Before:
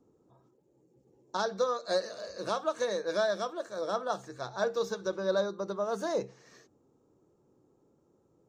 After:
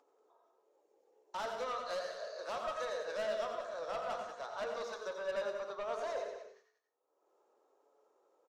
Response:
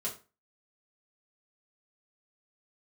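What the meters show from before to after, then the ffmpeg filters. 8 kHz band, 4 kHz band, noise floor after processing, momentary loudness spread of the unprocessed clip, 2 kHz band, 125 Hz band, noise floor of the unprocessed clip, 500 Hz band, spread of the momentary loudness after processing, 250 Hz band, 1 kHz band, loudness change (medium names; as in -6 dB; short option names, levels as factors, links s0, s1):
-9.0 dB, -7.5 dB, -79 dBFS, 7 LU, -5.5 dB, under -15 dB, -69 dBFS, -7.5 dB, 6 LU, -16.5 dB, -5.0 dB, -7.0 dB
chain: -filter_complex "[0:a]aemphasis=mode=reproduction:type=50fm,agate=range=0.0251:threshold=0.002:ratio=16:detection=peak,highpass=f=550:w=0.5412,highpass=f=550:w=1.3066,acompressor=mode=upward:threshold=0.00631:ratio=2.5,flanger=delay=7:depth=9.5:regen=72:speed=0.38:shape=sinusoidal,asoftclip=type=tanh:threshold=0.0133,aecho=1:1:187:0.299,asplit=2[s0][s1];[1:a]atrim=start_sample=2205,adelay=85[s2];[s1][s2]afir=irnorm=-1:irlink=0,volume=0.447[s3];[s0][s3]amix=inputs=2:normalize=0,volume=1.33"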